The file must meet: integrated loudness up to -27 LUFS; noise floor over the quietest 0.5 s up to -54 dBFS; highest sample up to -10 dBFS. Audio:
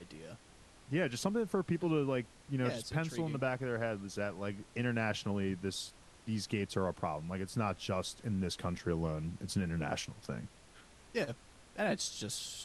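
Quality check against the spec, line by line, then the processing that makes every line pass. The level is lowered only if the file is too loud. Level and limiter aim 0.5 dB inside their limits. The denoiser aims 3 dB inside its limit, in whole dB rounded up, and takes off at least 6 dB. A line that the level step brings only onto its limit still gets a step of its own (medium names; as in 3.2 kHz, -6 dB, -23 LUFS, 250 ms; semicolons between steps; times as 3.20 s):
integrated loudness -37.0 LUFS: pass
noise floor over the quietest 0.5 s -59 dBFS: pass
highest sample -19.5 dBFS: pass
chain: none needed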